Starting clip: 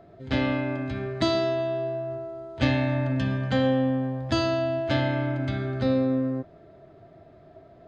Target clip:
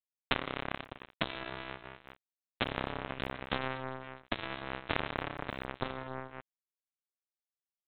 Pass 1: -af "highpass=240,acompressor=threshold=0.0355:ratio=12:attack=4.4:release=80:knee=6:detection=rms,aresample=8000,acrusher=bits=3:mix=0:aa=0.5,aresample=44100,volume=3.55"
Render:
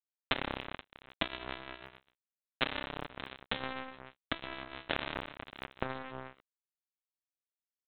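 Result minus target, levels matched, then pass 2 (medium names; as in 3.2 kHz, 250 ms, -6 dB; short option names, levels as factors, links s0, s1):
125 Hz band -4.0 dB
-af "highpass=70,acompressor=threshold=0.0355:ratio=12:attack=4.4:release=80:knee=6:detection=rms,aresample=8000,acrusher=bits=3:mix=0:aa=0.5,aresample=44100,volume=3.55"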